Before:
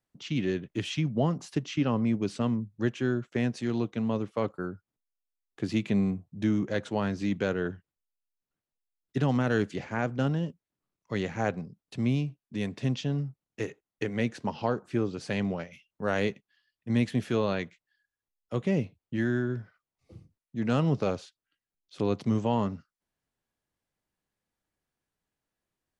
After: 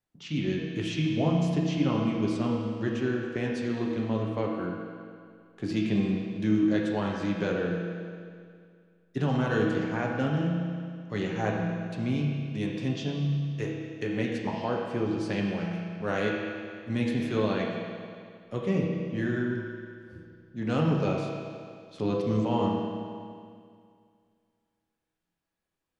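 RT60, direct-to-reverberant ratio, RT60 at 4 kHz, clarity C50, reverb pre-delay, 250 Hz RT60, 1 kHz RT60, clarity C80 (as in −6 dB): 2.1 s, −2.0 dB, 2.1 s, 0.5 dB, 6 ms, 2.2 s, 2.2 s, 2.0 dB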